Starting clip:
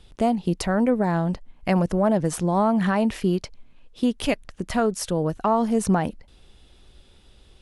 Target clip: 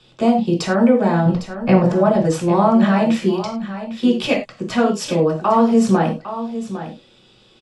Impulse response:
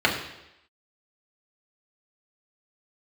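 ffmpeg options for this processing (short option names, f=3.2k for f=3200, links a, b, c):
-filter_complex "[0:a]asettb=1/sr,asplit=3[a][b][c];[a]atrim=end=1.254[d];[b]atrim=start=1.25:end=1.84,asetpts=PTS-STARTPTS,afade=t=in:d=0.004:c=qsin,afade=t=out:st=0.586:d=0.004:c=qsin,aemphasis=mode=reproduction:type=bsi[e];[c]atrim=start=1.836[f];[d][e]acrossfade=d=0.004:c1=hsin:c2=qsin[g];[g][f]acrossfade=d=0.004:c1=qsin:c2=hsin,aecho=1:1:805:0.251[h];[1:a]atrim=start_sample=2205,afade=t=out:st=0.24:d=0.01,atrim=end_sample=11025,asetrate=74970,aresample=44100[i];[h][i]afir=irnorm=-1:irlink=0,volume=-6.5dB"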